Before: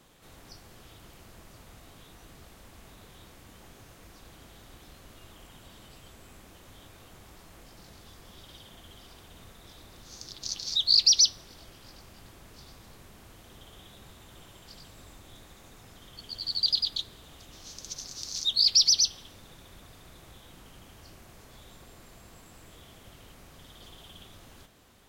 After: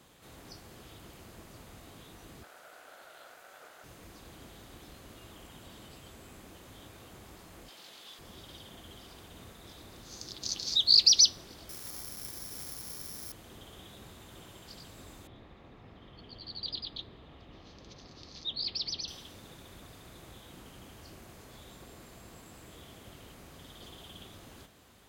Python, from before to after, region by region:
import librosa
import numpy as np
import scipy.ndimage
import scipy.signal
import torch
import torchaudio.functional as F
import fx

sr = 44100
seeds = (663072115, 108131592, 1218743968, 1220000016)

y = fx.chain(x, sr, fx.highpass_res(hz=1000.0, q=5.3),
    fx.ring_mod(carrier_hz=380.0), at=(2.43, 3.84))
y = fx.chain(y, sr, fx.bessel_highpass(hz=430.0, order=2),
    fx.peak_eq(hz=3300.0, db=9.0, octaves=0.73), at=(7.68, 8.19))
y = fx.chain(y, sr, fx.cvsd(bps=16000),
    fx.resample_bad(factor=8, down='filtered', up='zero_stuff'), at=(11.69, 13.32))
y = fx.chain(y, sr, fx.air_absorb(metres=340.0),
    fx.notch(hz=1500.0, q=11.0), at=(15.27, 19.08))
y = scipy.signal.sosfilt(scipy.signal.butter(2, 41.0, 'highpass', fs=sr, output='sos'), y)
y = fx.notch(y, sr, hz=5600.0, q=26.0)
y = fx.dynamic_eq(y, sr, hz=320.0, q=0.82, threshold_db=-58.0, ratio=4.0, max_db=5)